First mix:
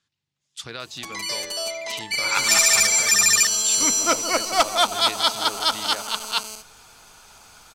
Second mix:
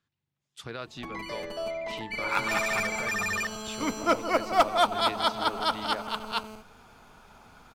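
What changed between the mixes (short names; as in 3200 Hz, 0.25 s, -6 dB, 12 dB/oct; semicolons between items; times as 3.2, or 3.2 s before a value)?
first sound: add tone controls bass +11 dB, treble -13 dB; master: add bell 6400 Hz -13 dB 2.6 oct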